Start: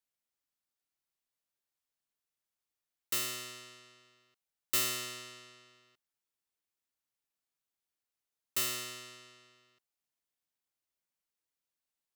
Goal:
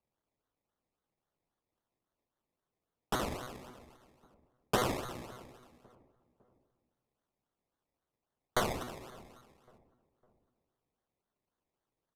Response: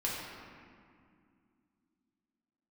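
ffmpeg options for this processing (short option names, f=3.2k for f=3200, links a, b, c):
-filter_complex "[0:a]aecho=1:1:0.8:0.35,acrusher=samples=24:mix=1:aa=0.000001:lfo=1:lforange=14.4:lforate=3.7,asplit=2[a][b];[b]adelay=555,lowpass=f=1.1k:p=1,volume=-22.5dB,asplit=2[c][d];[d]adelay=555,lowpass=f=1.1k:p=1,volume=0.45,asplit=2[e][f];[f]adelay=555,lowpass=f=1.1k:p=1,volume=0.45[g];[c][e][g]amix=inputs=3:normalize=0[h];[a][h]amix=inputs=2:normalize=0,aresample=32000,aresample=44100"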